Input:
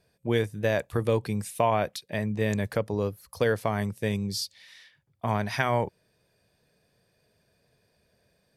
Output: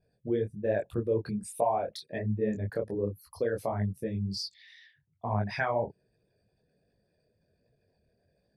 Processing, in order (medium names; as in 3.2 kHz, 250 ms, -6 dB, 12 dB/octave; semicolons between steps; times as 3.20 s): resonances exaggerated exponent 2; detune thickener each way 45 cents